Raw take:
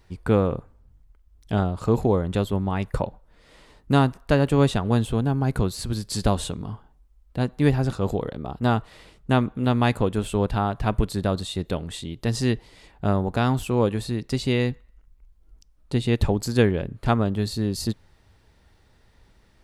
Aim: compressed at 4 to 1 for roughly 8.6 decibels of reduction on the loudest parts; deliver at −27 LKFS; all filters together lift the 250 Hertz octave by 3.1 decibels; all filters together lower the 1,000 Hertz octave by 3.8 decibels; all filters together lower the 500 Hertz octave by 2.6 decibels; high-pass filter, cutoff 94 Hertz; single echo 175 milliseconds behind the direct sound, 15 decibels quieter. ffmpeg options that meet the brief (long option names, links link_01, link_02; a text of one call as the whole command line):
ffmpeg -i in.wav -af "highpass=94,equalizer=frequency=250:width_type=o:gain=5,equalizer=frequency=500:width_type=o:gain=-4,equalizer=frequency=1000:width_type=o:gain=-4,acompressor=threshold=-23dB:ratio=4,aecho=1:1:175:0.178,volume=2dB" out.wav